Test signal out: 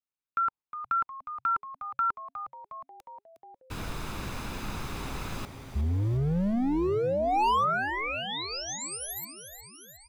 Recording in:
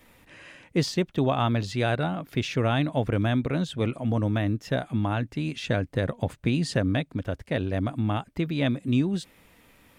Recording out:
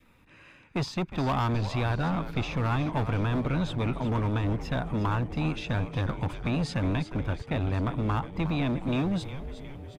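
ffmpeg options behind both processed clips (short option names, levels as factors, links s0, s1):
-filter_complex "[0:a]adynamicequalizer=threshold=0.00398:dfrequency=930:dqfactor=3.3:tfrequency=930:tqfactor=3.3:attack=5:release=100:ratio=0.375:range=4:mode=boostabove:tftype=bell,agate=range=0.501:threshold=0.00794:ratio=16:detection=peak,highshelf=f=5200:g=-11.5,aecho=1:1:0.8:0.37,acrossover=split=1100[s0][s1];[s0]asoftclip=type=hard:threshold=0.0447[s2];[s1]acompressor=threshold=0.0141:ratio=6[s3];[s2][s3]amix=inputs=2:normalize=0,asplit=8[s4][s5][s6][s7][s8][s9][s10][s11];[s5]adelay=360,afreqshift=-140,volume=0.282[s12];[s6]adelay=720,afreqshift=-280,volume=0.172[s13];[s7]adelay=1080,afreqshift=-420,volume=0.105[s14];[s8]adelay=1440,afreqshift=-560,volume=0.0638[s15];[s9]adelay=1800,afreqshift=-700,volume=0.0389[s16];[s10]adelay=2160,afreqshift=-840,volume=0.0237[s17];[s11]adelay=2520,afreqshift=-980,volume=0.0145[s18];[s4][s12][s13][s14][s15][s16][s17][s18]amix=inputs=8:normalize=0,volume=1.19"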